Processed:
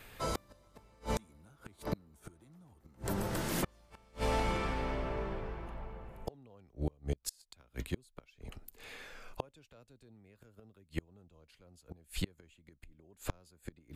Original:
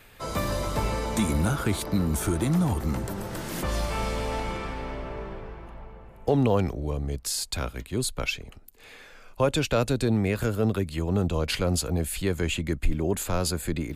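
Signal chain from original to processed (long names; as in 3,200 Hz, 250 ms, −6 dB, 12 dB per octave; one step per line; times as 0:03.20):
gate with flip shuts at −19 dBFS, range −34 dB
level −1.5 dB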